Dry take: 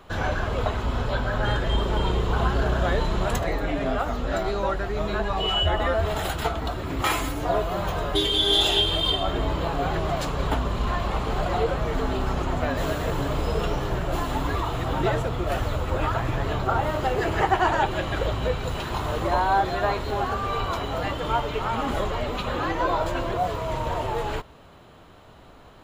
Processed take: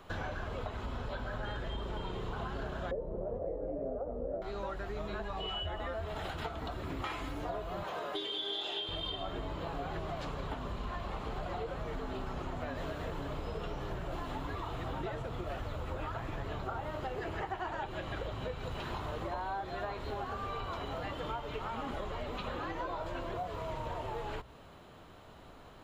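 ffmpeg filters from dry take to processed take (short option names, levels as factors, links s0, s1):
-filter_complex "[0:a]asettb=1/sr,asplit=3[s0][s1][s2];[s0]atrim=end=2.914[s3];[s1]atrim=start=2.91:end=4.42,asetpts=PTS-STARTPTS,afade=t=in:d=0.004:c=qsin,afade=t=out:st=1.506:d=0.004:c=qsin,lowpass=f=520:t=q:w=5.7[s4];[s2]atrim=start=4.416[s5];[s3][s4]acrossfade=d=0.004:c1=hsin:c2=qsin[s6];[s6][s5]acrossfade=d=0.004:c1=qsin:c2=hsin,asettb=1/sr,asplit=3[s7][s8][s9];[s7]atrim=end=7.834[s10];[s8]atrim=start=7.83:end=8.89,asetpts=PTS-STARTPTS,afade=t=in:d=0.004:c=qsin,afade=t=out:st=1.056:d=0.004:c=qsin,highpass=310[s11];[s9]atrim=start=8.886[s12];[s10][s11]acrossfade=d=0.004:c1=hsin:c2=qsin[s13];[s13][s12]acrossfade=d=0.004:c1=qsin:c2=hsin,acrossover=split=5000[s14][s15];[s15]acompressor=threshold=0.002:ratio=4:attack=1:release=60[s16];[s14][s16]amix=inputs=2:normalize=0,bandreject=f=60:t=h:w=6,bandreject=f=120:t=h:w=6,acompressor=threshold=0.0282:ratio=6,volume=0.596"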